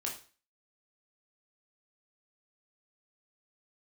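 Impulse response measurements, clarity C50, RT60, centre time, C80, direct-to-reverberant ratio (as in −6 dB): 7.5 dB, 0.40 s, 25 ms, 13.0 dB, −2.0 dB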